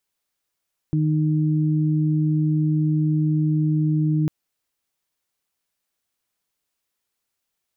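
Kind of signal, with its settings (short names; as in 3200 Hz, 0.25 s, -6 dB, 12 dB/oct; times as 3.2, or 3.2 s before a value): steady additive tone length 3.35 s, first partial 154 Hz, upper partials -5.5 dB, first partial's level -18 dB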